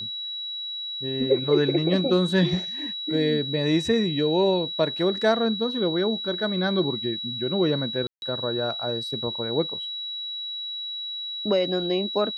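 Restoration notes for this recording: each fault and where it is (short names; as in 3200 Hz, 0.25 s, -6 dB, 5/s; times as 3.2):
tone 3900 Hz -30 dBFS
8.07–8.22 gap 0.151 s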